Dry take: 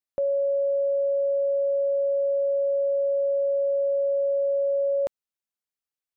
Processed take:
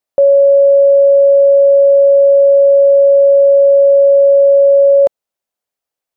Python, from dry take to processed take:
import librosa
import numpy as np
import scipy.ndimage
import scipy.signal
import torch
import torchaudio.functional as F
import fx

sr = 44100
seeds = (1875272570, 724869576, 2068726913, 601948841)

y = fx.peak_eq(x, sr, hz=610.0, db=10.0, octaves=1.3)
y = F.gain(torch.from_numpy(y), 7.0).numpy()